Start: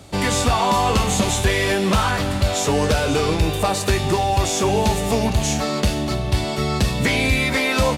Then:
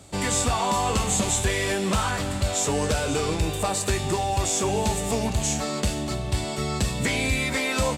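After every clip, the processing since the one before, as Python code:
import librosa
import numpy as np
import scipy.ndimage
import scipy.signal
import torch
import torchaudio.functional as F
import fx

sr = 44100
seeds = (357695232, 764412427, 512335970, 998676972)

y = fx.peak_eq(x, sr, hz=7800.0, db=10.0, octaves=0.38)
y = F.gain(torch.from_numpy(y), -6.0).numpy()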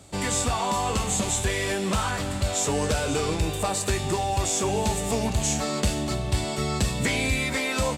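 y = fx.rider(x, sr, range_db=10, speed_s=2.0)
y = F.gain(torch.from_numpy(y), -1.0).numpy()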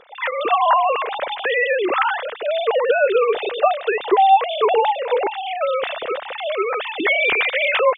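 y = fx.sine_speech(x, sr)
y = F.gain(torch.from_numpy(y), 6.5).numpy()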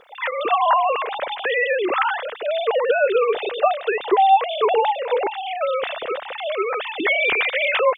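y = fx.quant_dither(x, sr, seeds[0], bits=12, dither='none')
y = F.gain(torch.from_numpy(y), -1.5).numpy()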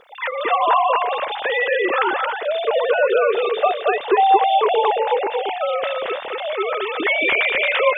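y = x + 10.0 ** (-3.5 / 20.0) * np.pad(x, (int(225 * sr / 1000.0), 0))[:len(x)]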